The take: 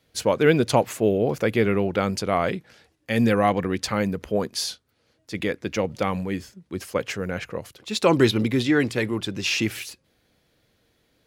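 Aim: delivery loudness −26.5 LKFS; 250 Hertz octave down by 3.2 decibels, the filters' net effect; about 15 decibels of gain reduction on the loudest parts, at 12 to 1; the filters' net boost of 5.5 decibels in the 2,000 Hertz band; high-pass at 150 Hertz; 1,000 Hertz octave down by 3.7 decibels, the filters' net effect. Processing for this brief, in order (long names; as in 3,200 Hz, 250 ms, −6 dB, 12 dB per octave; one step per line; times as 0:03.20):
high-pass filter 150 Hz
parametric band 250 Hz −3 dB
parametric band 1,000 Hz −7.5 dB
parametric band 2,000 Hz +9 dB
downward compressor 12 to 1, threshold −28 dBFS
level +6.5 dB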